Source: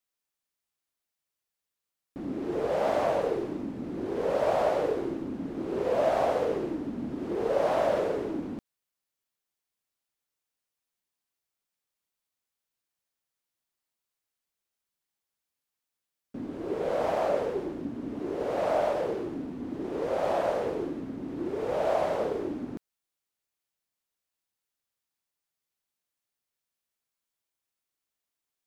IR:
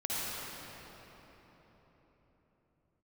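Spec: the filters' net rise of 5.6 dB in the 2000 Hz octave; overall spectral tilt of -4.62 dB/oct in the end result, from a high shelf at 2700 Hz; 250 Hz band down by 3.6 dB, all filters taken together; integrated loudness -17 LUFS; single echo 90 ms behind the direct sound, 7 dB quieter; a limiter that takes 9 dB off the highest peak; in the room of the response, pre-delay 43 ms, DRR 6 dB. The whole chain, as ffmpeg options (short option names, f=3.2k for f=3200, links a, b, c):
-filter_complex "[0:a]equalizer=f=250:t=o:g=-5,equalizer=f=2k:t=o:g=9,highshelf=f=2.7k:g=-4.5,alimiter=limit=-22dB:level=0:latency=1,aecho=1:1:90:0.447,asplit=2[a][b];[1:a]atrim=start_sample=2205,adelay=43[c];[b][c]afir=irnorm=-1:irlink=0,volume=-13dB[d];[a][d]amix=inputs=2:normalize=0,volume=14.5dB"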